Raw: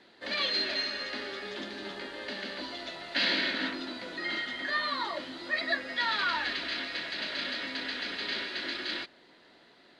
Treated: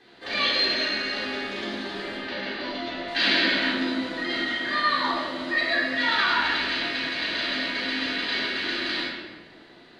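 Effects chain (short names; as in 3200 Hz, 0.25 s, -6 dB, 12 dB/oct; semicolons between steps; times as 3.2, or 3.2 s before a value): 2.17–3.08 LPF 4400 Hz 12 dB/oct; shoebox room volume 1100 m³, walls mixed, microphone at 3.7 m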